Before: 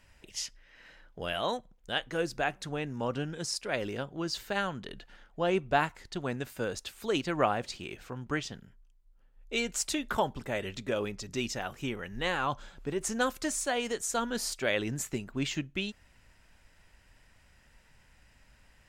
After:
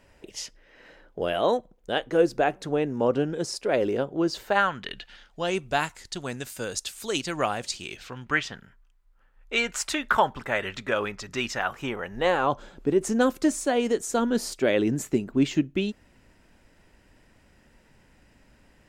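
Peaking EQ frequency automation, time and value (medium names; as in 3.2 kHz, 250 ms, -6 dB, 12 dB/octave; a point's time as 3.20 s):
peaking EQ +12.5 dB 2.1 oct
4.36 s 420 Hz
4.73 s 1.8 kHz
5.58 s 8 kHz
7.74 s 8 kHz
8.50 s 1.4 kHz
11.57 s 1.4 kHz
12.79 s 310 Hz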